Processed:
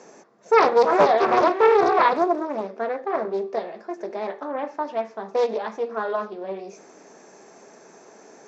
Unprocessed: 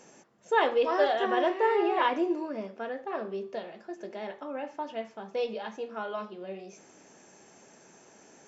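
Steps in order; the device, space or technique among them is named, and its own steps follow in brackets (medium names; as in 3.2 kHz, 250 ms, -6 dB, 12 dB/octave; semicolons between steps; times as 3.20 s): full-range speaker at full volume (loudspeaker Doppler distortion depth 0.71 ms; cabinet simulation 180–6700 Hz, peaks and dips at 430 Hz +6 dB, 680 Hz +4 dB, 1.1 kHz +4 dB, 3 kHz -9 dB); trim +6 dB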